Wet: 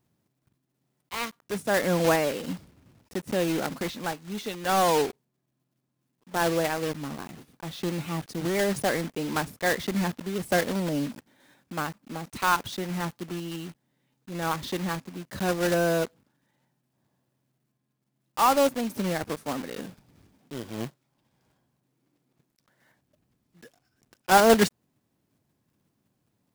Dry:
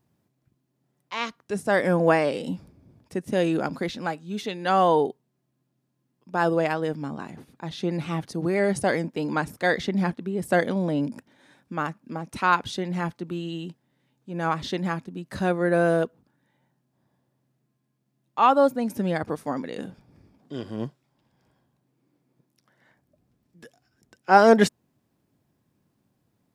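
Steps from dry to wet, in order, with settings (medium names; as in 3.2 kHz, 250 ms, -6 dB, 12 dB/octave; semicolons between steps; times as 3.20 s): block-companded coder 3-bit; trim -3 dB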